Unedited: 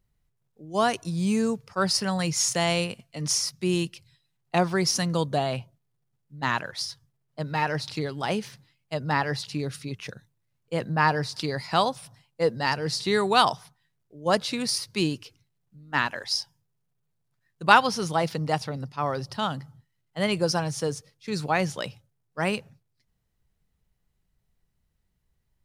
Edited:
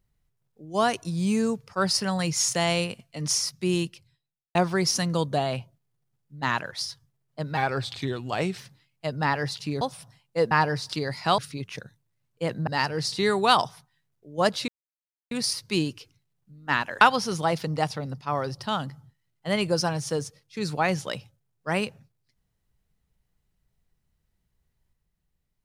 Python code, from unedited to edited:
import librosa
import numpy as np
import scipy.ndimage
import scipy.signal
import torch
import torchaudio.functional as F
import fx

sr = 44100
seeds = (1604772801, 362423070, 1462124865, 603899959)

y = fx.studio_fade_out(x, sr, start_s=3.76, length_s=0.79)
y = fx.edit(y, sr, fx.speed_span(start_s=7.57, length_s=0.89, speed=0.88),
    fx.swap(start_s=9.69, length_s=1.29, other_s=11.85, other_length_s=0.7),
    fx.insert_silence(at_s=14.56, length_s=0.63),
    fx.cut(start_s=16.26, length_s=1.46), tone=tone)